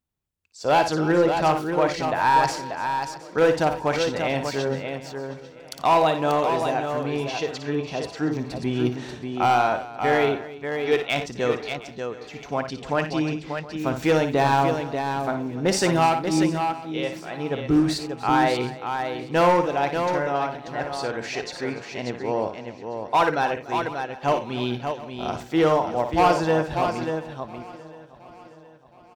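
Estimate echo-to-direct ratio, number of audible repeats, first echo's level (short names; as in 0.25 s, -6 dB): -3.5 dB, 11, -8.5 dB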